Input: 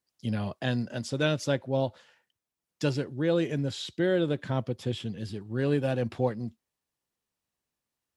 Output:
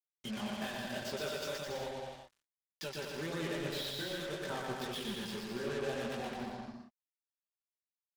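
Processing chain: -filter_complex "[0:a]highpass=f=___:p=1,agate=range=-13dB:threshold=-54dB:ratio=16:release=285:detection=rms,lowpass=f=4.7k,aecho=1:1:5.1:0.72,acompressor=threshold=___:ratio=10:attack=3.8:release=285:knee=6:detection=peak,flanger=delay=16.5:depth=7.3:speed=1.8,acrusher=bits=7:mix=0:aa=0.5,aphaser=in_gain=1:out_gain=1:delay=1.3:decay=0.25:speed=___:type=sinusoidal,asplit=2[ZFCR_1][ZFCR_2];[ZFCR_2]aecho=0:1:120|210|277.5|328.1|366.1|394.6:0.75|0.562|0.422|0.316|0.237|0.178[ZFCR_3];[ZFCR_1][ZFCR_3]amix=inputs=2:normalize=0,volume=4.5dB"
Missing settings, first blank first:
710, -39dB, 0.87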